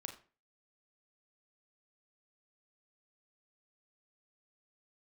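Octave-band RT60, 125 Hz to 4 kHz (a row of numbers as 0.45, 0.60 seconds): 0.45, 0.40, 0.40, 0.35, 0.35, 0.30 seconds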